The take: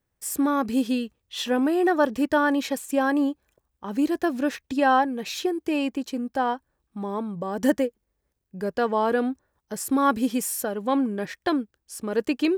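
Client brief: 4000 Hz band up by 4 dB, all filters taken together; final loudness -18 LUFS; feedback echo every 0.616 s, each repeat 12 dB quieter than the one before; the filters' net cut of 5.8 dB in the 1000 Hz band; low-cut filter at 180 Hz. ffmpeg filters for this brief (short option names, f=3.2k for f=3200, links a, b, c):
-af "highpass=180,equalizer=f=1k:t=o:g=-8,equalizer=f=4k:t=o:g=5.5,aecho=1:1:616|1232|1848:0.251|0.0628|0.0157,volume=9dB"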